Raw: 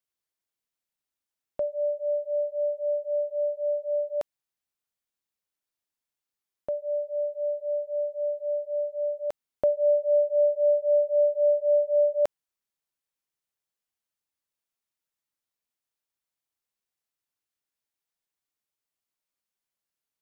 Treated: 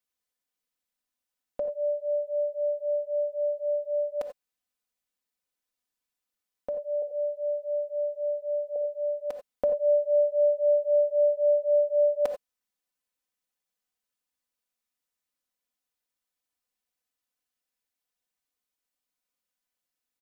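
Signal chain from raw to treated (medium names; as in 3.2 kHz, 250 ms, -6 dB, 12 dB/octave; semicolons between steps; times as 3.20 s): 7.02–8.76 s: steep high-pass 150 Hz; comb 4 ms, depth 68%; gated-style reverb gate 110 ms rising, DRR 8 dB; trim -1 dB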